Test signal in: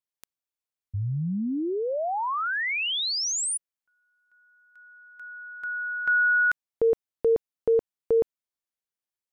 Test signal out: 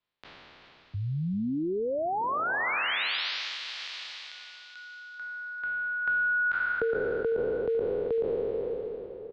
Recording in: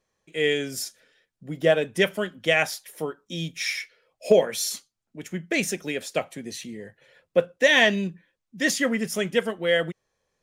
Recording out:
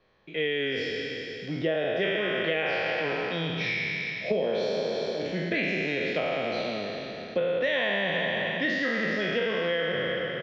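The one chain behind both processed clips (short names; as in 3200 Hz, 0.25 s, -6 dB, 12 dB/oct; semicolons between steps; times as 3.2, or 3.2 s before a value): spectral trails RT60 2.51 s; on a send: echo 0.387 s -13.5 dB; on the sum: compressor 4:1, threshold -21 dBFS; steep low-pass 4200 Hz 36 dB/oct; three-band squash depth 40%; gain -3.5 dB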